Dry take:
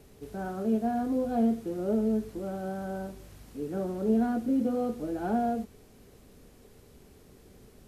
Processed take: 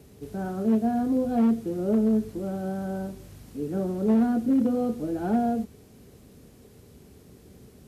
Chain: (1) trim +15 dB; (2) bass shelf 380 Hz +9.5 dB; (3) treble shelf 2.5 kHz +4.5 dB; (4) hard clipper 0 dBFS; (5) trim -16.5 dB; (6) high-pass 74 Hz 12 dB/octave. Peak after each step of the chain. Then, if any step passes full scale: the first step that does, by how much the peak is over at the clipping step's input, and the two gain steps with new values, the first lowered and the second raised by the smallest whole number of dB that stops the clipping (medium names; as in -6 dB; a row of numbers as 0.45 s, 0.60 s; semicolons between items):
-1.0 dBFS, +5.0 dBFS, +5.0 dBFS, 0.0 dBFS, -16.5 dBFS, -13.5 dBFS; step 2, 5.0 dB; step 1 +10 dB, step 5 -11.5 dB